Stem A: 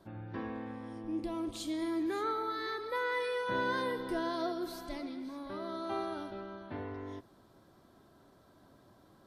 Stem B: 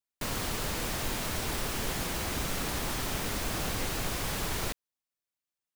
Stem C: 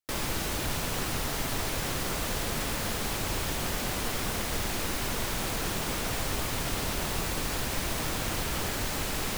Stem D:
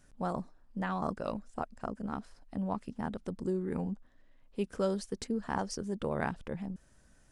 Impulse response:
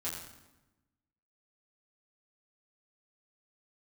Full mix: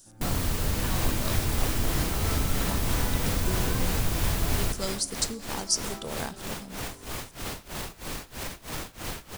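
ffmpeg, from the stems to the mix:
-filter_complex "[0:a]volume=-9dB[a];[1:a]lowshelf=f=210:g=11.5,highshelf=f=9.5k:g=6,volume=-2.5dB,asplit=2[b][c];[c]volume=-9.5dB[d];[2:a]alimiter=limit=-24dB:level=0:latency=1:release=41,tremolo=f=3.1:d=0.92,adelay=700,volume=0.5dB[e];[3:a]aexciter=amount=8.3:drive=6.2:freq=3.2k,volume=-4.5dB,asplit=2[f][g];[g]volume=-14dB[h];[4:a]atrim=start_sample=2205[i];[d][h]amix=inputs=2:normalize=0[j];[j][i]afir=irnorm=-1:irlink=0[k];[a][b][e][f][k]amix=inputs=5:normalize=0"

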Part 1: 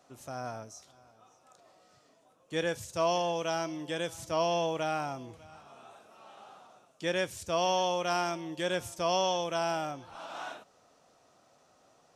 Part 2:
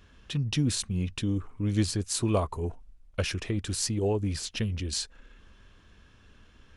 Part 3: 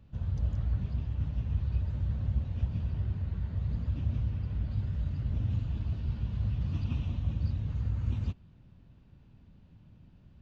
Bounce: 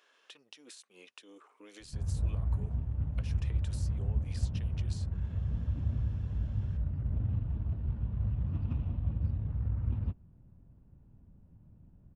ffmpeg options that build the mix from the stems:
-filter_complex "[1:a]highpass=f=450:w=0.5412,highpass=f=450:w=1.3066,acompressor=threshold=-34dB:ratio=6,volume=-4.5dB[a];[2:a]equalizer=f=190:w=0.31:g=-3.5,adynamicsmooth=sensitivity=5:basefreq=870,adelay=1800,volume=1.5dB[b];[a]acompressor=threshold=-50dB:ratio=6,volume=0dB[c];[b][c]amix=inputs=2:normalize=0"

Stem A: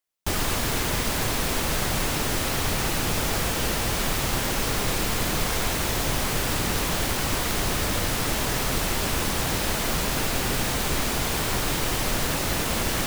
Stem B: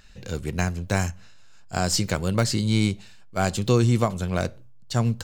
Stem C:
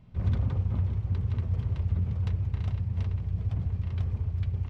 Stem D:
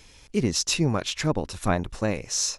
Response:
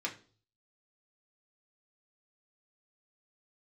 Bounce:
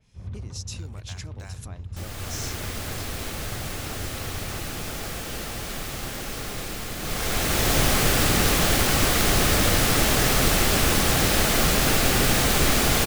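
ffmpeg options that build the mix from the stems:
-filter_complex "[0:a]bandreject=f=960:w=7.8,dynaudnorm=f=210:g=5:m=9dB,adelay=1700,volume=-6dB,afade=t=in:st=6.98:d=0.78:silence=0.237137[a];[1:a]highpass=690,acompressor=threshold=-37dB:ratio=1.5,adelay=500,volume=-16.5dB[b];[2:a]volume=-12dB[c];[3:a]acompressor=threshold=-28dB:ratio=10,adynamicequalizer=threshold=0.00178:dfrequency=3100:dqfactor=0.7:tfrequency=3100:tqfactor=0.7:attack=5:release=100:ratio=0.375:range=4:mode=boostabove:tftype=highshelf,volume=-16dB[d];[a][b][c][d]amix=inputs=4:normalize=0,dynaudnorm=f=140:g=3:m=3dB"

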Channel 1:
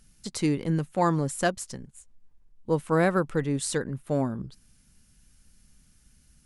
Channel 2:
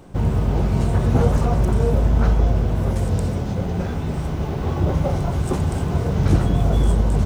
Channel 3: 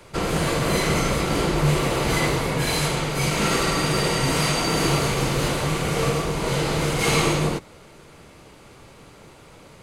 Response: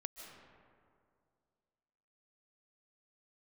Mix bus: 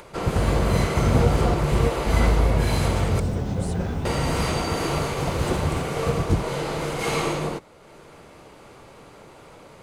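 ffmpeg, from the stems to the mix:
-filter_complex "[0:a]lowshelf=f=110:t=q:w=3:g=10.5,acompressor=threshold=-28dB:ratio=6,volume=-9dB,afade=t=in:st=1.84:d=0.36:silence=0.354813,asplit=2[a][b];[1:a]volume=-2.5dB[c];[2:a]equalizer=f=700:t=o:w=2.6:g=6.5,volume=-8dB,asplit=3[d][e][f];[d]atrim=end=3.2,asetpts=PTS-STARTPTS,afade=t=out:st=3.196:d=0.004:c=hsin[g];[e]atrim=start=3.2:end=4.05,asetpts=PTS-STARTPTS,volume=0[h];[f]atrim=start=4.05,asetpts=PTS-STARTPTS,afade=t=in:d=0.004:c=hsin[i];[g][h][i]concat=n=3:v=0:a=1[j];[b]apad=whole_len=319973[k];[c][k]sidechaingate=range=-33dB:threshold=-54dB:ratio=16:detection=peak[l];[a][l][j]amix=inputs=3:normalize=0,acompressor=mode=upward:threshold=-39dB:ratio=2.5"

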